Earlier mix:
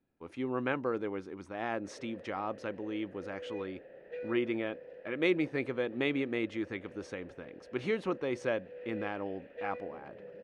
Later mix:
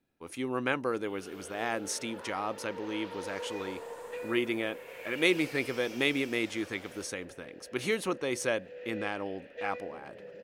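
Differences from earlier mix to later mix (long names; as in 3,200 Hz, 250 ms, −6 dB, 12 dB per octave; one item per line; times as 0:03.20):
first sound: unmuted
reverb: on, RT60 1.2 s
master: remove head-to-tape spacing loss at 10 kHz 26 dB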